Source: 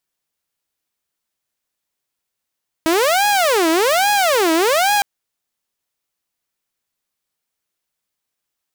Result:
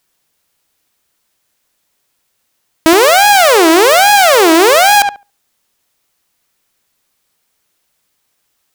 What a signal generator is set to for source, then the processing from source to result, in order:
siren wail 320–830 Hz 1.2 per s saw -10.5 dBFS 2.16 s
on a send: filtered feedback delay 70 ms, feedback 16%, low-pass 1.8 kHz, level -10 dB; on the sum: loudness maximiser +15 dB

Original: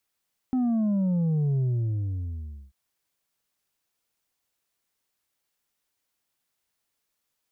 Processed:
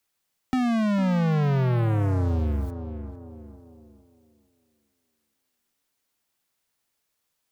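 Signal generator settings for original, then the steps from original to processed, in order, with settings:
sub drop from 260 Hz, over 2.19 s, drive 4 dB, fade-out 1.13 s, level -22 dB
waveshaping leveller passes 5; on a send: tape echo 453 ms, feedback 38%, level -7.5 dB, low-pass 1 kHz; on the sum: three bands compressed up and down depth 40%

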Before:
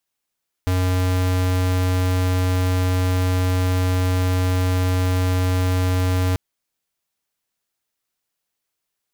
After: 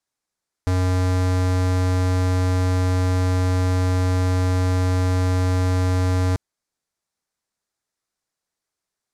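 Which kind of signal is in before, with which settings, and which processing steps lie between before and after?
tone square 91.8 Hz -19 dBFS 5.69 s
low-pass 8.6 kHz 12 dB/octave; peaking EQ 2.9 kHz -8 dB 0.66 oct

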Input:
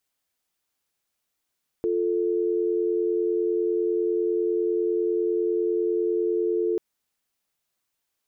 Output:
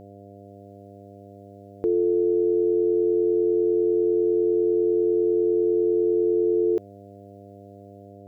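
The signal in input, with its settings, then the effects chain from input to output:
call progress tone dial tone, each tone -24 dBFS 4.94 s
level rider gain up to 3 dB; mains buzz 100 Hz, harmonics 7, -45 dBFS -1 dB/octave

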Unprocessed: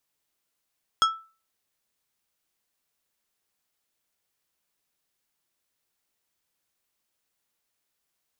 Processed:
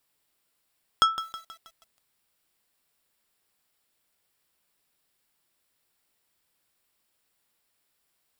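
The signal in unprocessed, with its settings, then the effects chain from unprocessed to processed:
glass hit plate, lowest mode 1.32 kHz, decay 0.35 s, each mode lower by 5 dB, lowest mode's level -14.5 dB
band-stop 6.3 kHz, Q 5.9; in parallel at -2 dB: compression 16:1, threshold -30 dBFS; on the sum: bit-crushed delay 160 ms, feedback 55%, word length 7-bit, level -13 dB

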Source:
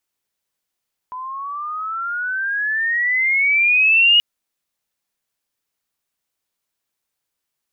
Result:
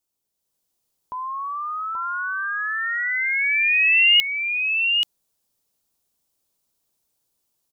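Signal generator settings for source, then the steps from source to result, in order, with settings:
sweep logarithmic 1 kHz -> 2.9 kHz -27 dBFS -> -9 dBFS 3.08 s
peaking EQ 1.9 kHz -12 dB 1.7 oct; level rider gain up to 6 dB; on a send: delay 831 ms -5 dB

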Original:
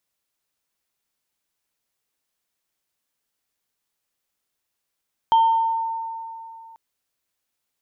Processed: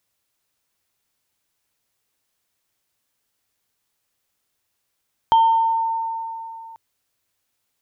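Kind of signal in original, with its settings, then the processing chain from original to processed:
sine partials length 1.44 s, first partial 906 Hz, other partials 3.15 kHz, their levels -17.5 dB, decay 2.79 s, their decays 0.70 s, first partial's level -11.5 dB
in parallel at -2 dB: compression, threshold -27 dBFS; on the sum: peaking EQ 100 Hz +7.5 dB 0.42 oct

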